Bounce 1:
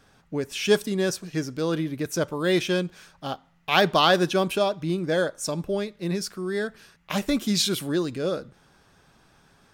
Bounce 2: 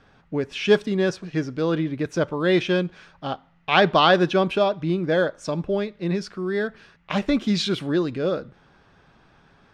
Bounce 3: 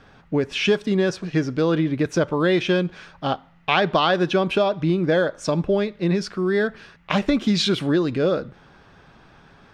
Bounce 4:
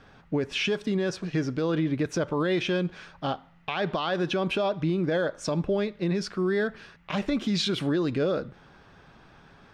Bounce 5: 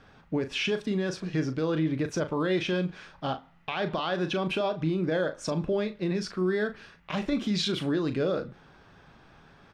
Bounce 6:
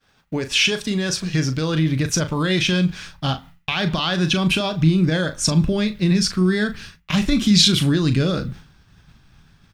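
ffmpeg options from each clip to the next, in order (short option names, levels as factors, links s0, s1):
-af "lowpass=3400,volume=1.41"
-af "acompressor=threshold=0.0891:ratio=6,volume=1.88"
-af "alimiter=limit=0.168:level=0:latency=1:release=50,volume=0.708"
-filter_complex "[0:a]asplit=2[s0][s1];[s1]adelay=38,volume=0.316[s2];[s0][s2]amix=inputs=2:normalize=0,volume=0.794"
-af "agate=range=0.0224:threshold=0.00501:ratio=3:detection=peak,asubboost=boost=7:cutoff=180,crystalizer=i=6:c=0,volume=1.58"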